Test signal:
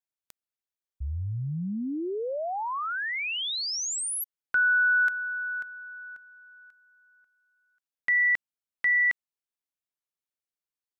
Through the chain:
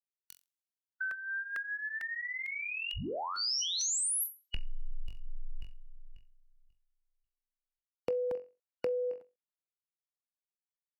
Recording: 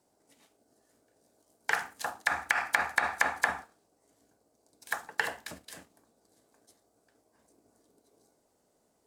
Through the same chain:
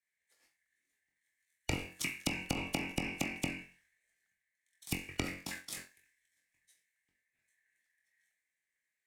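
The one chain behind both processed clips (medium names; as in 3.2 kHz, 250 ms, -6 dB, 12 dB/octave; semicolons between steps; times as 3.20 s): four frequency bands reordered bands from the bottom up 2143; flutter echo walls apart 3.8 m, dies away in 0.26 s; compression 10:1, threshold -38 dBFS; crackling interface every 0.45 s, samples 64, repeat, from 0.66 s; three bands expanded up and down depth 70%; trim +2.5 dB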